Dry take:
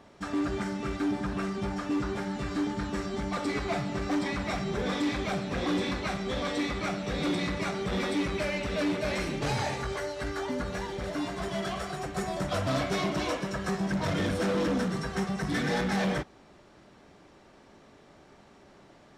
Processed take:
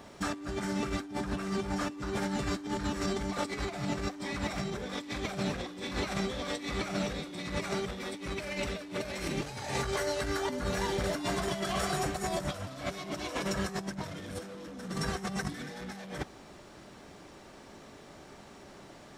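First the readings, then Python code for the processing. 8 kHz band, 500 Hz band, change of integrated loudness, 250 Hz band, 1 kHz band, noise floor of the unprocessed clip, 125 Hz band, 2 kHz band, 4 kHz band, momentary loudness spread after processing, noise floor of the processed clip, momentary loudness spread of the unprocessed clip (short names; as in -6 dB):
+2.0 dB, -3.5 dB, -4.0 dB, -5.5 dB, -3.0 dB, -56 dBFS, -4.0 dB, -3.5 dB, -1.5 dB, 19 LU, -52 dBFS, 5 LU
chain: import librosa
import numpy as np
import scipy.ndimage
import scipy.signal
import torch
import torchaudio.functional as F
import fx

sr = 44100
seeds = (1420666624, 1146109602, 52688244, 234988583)

y = fx.high_shelf(x, sr, hz=6800.0, db=10.5)
y = fx.over_compress(y, sr, threshold_db=-34.0, ratio=-0.5)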